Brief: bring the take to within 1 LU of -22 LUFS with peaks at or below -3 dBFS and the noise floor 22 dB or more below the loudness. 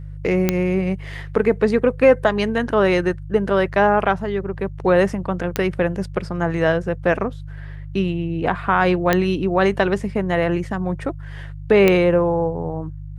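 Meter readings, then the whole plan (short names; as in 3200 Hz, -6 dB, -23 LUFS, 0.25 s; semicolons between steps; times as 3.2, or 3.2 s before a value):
clicks 4; hum 50 Hz; harmonics up to 150 Hz; hum level -31 dBFS; loudness -19.5 LUFS; peak -1.5 dBFS; loudness target -22.0 LUFS
-> de-click; de-hum 50 Hz, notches 3; gain -2.5 dB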